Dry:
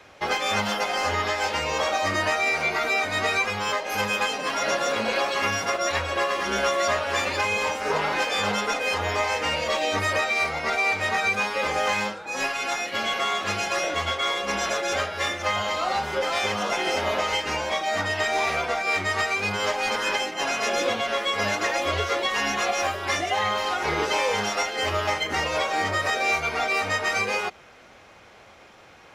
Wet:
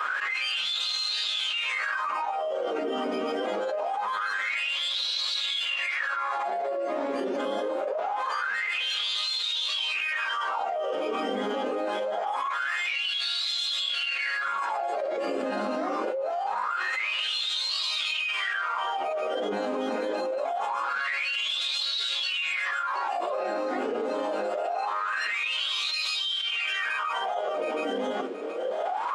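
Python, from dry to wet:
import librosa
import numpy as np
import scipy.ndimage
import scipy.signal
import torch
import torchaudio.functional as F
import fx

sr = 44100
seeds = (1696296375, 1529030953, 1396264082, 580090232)

p1 = scipy.signal.sosfilt(scipy.signal.butter(8, 190.0, 'highpass', fs=sr, output='sos'), x)
p2 = fx.bass_treble(p1, sr, bass_db=-5, treble_db=6)
p3 = fx.rider(p2, sr, range_db=10, speed_s=0.5)
p4 = p2 + (p3 * 10.0 ** (-2.0 / 20.0))
p5 = fx.echo_feedback(p4, sr, ms=721, feedback_pct=19, wet_db=-9)
p6 = fx.wah_lfo(p5, sr, hz=0.24, low_hz=260.0, high_hz=3000.0, q=19.0)
p7 = fx.formant_shift(p6, sr, semitones=5)
p8 = fx.env_flatten(p7, sr, amount_pct=100)
y = p8 * 10.0 ** (-7.0 / 20.0)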